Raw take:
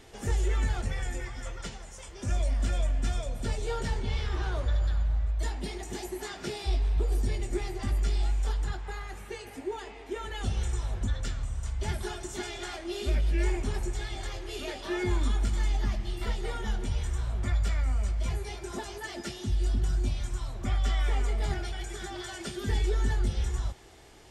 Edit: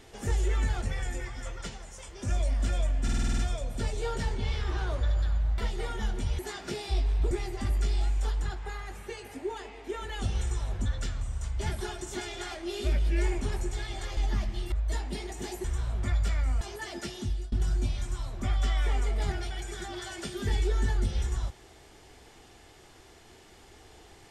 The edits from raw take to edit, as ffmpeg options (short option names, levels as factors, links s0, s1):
-filter_complex "[0:a]asplit=16[s0][s1][s2][s3][s4][s5][s6][s7][s8][s9][s10][s11][s12][s13][s14][s15];[s0]atrim=end=3.082[s16];[s1]atrim=start=3.028:end=3.082[s17];[s2]atrim=start=3.028:end=3.082[s18];[s3]atrim=start=3.028:end=3.082[s19];[s4]atrim=start=3.028:end=3.082[s20];[s5]atrim=start=3.028:end=3.082[s21];[s6]atrim=start=3.028:end=3.082[s22];[s7]atrim=start=3.028:end=5.232[s23];[s8]atrim=start=16.228:end=17.042[s24];[s9]atrim=start=6.148:end=7.072[s25];[s10]atrim=start=7.528:end=14.392[s26];[s11]atrim=start=15.678:end=16.232[s27];[s12]atrim=start=5.228:end=6.152[s28];[s13]atrim=start=17.038:end=18.012[s29];[s14]atrim=start=18.828:end=19.74,asetpts=PTS-STARTPTS,afade=t=out:st=0.612:d=0.3:silence=0.0668344[s30];[s15]atrim=start=19.74,asetpts=PTS-STARTPTS,afade=t=in:d=0.004:c=hsin:silence=0.0668344[s31];[s16][s17]acrossfade=d=0.004:c1=hsin:c2=hsin[s32];[s32][s18]acrossfade=d=0.004:c1=hsin:c2=hsin[s33];[s33][s19]acrossfade=d=0.004:c1=hsin:c2=hsin[s34];[s34][s20]acrossfade=d=0.004:c1=hsin:c2=hsin[s35];[s35][s21]acrossfade=d=0.004:c1=hsin:c2=hsin[s36];[s36][s22]acrossfade=d=0.004:c1=hsin:c2=hsin[s37];[s37][s23]acrossfade=d=0.004:c1=hsin:c2=hsin[s38];[s38][s24]acrossfade=d=0.004:c1=hsin:c2=hsin[s39];[s39][s25]acrossfade=d=0.004:c1=hsin:c2=hsin[s40];[s40][s26]acrossfade=d=0.004:c1=hsin:c2=hsin[s41];[s41][s27]acrossfade=d=0.004:c1=hsin:c2=hsin[s42];[s42][s28]acrossfade=d=0.004:c1=hsin:c2=hsin[s43];[s43][s29]acrossfade=d=0.004:c1=hsin:c2=hsin[s44];[s30][s31]concat=n=2:v=0:a=1[s45];[s44][s45]acrossfade=d=0.004:c1=hsin:c2=hsin"